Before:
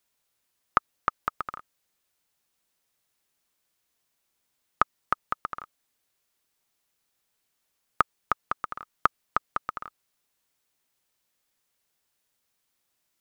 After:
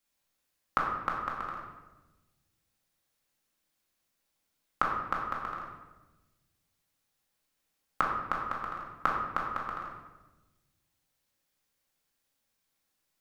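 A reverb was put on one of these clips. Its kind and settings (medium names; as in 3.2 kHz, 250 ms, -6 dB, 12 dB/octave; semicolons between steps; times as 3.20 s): simulated room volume 600 m³, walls mixed, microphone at 2.2 m; trim -7 dB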